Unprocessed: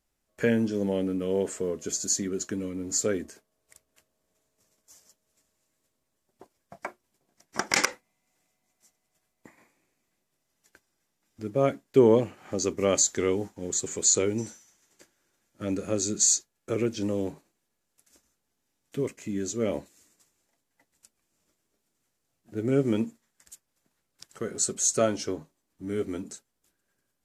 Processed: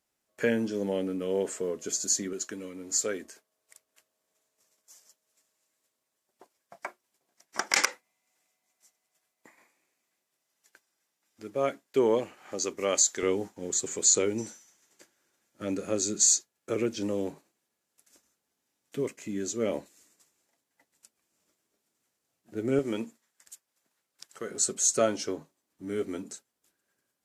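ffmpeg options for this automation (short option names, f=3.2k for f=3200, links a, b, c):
-af "asetnsamples=n=441:p=0,asendcmd='2.33 highpass f 640;13.23 highpass f 220;22.79 highpass f 530;24.5 highpass f 230',highpass=f=290:p=1"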